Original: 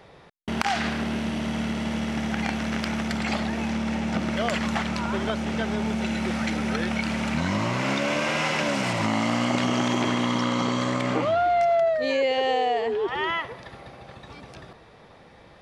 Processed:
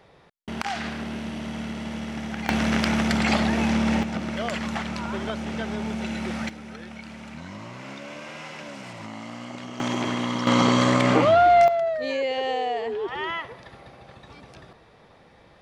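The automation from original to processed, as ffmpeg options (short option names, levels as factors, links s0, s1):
-af "asetnsamples=n=441:p=0,asendcmd='2.49 volume volume 5dB;4.03 volume volume -3dB;6.49 volume volume -13.5dB;9.8 volume volume -2.5dB;10.47 volume volume 6dB;11.68 volume volume -3dB',volume=0.596"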